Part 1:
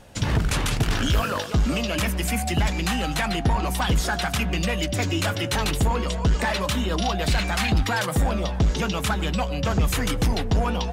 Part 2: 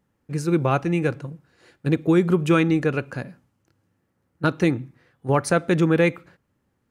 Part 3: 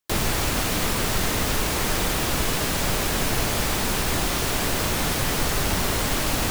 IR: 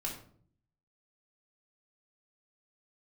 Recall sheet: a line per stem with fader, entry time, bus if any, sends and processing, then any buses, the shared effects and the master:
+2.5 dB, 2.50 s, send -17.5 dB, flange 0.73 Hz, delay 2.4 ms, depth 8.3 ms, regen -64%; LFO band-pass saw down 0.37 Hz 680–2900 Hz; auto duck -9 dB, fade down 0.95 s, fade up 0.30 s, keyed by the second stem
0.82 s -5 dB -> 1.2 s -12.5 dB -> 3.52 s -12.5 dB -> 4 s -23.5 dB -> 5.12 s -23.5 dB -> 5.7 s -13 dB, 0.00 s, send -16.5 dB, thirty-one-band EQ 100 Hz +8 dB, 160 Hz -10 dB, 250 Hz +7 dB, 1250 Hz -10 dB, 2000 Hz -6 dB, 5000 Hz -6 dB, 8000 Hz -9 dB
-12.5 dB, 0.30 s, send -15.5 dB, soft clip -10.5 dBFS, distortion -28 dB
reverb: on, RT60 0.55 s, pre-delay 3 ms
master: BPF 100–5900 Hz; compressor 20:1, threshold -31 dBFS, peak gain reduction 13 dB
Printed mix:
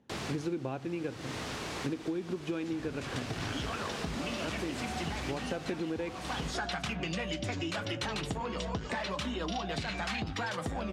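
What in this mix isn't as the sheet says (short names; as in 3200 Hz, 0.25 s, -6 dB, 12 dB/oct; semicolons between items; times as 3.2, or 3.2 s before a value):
stem 1: missing LFO band-pass saw down 0.37 Hz 680–2900 Hz; stem 2 -5.0 dB -> +4.5 dB; stem 3: entry 0.30 s -> 0.00 s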